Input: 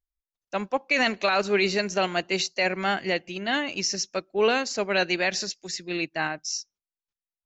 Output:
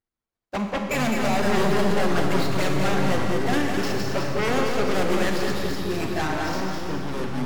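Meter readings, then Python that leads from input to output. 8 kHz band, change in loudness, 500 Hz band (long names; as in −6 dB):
can't be measured, +1.5 dB, +2.0 dB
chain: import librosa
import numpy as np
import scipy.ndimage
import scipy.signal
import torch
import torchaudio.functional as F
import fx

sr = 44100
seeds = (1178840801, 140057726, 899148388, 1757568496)

p1 = scipy.ndimage.median_filter(x, 15, mode='constant')
p2 = fx.highpass(p1, sr, hz=97.0, slope=6)
p3 = fx.low_shelf(p2, sr, hz=390.0, db=4.5)
p4 = fx.env_flanger(p3, sr, rest_ms=8.8, full_db=-20.0)
p5 = fx.fold_sine(p4, sr, drive_db=15, ceiling_db=-11.5)
p6 = p4 + (p5 * 10.0 ** (-6.0 / 20.0))
p7 = fx.echo_feedback(p6, sr, ms=208, feedback_pct=46, wet_db=-5)
p8 = fx.echo_pitch(p7, sr, ms=135, semitones=-6, count=3, db_per_echo=-6.0)
p9 = fx.rev_schroeder(p8, sr, rt60_s=2.0, comb_ms=28, drr_db=4.0)
y = p9 * 10.0 ** (-7.5 / 20.0)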